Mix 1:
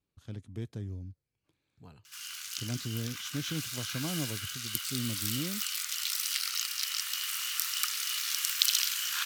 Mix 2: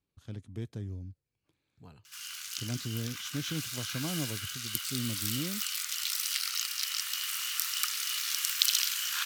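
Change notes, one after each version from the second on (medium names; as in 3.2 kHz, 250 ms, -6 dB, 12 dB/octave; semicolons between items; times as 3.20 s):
no change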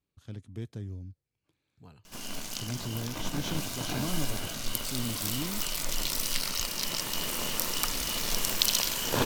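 background: remove elliptic high-pass 1.3 kHz, stop band 60 dB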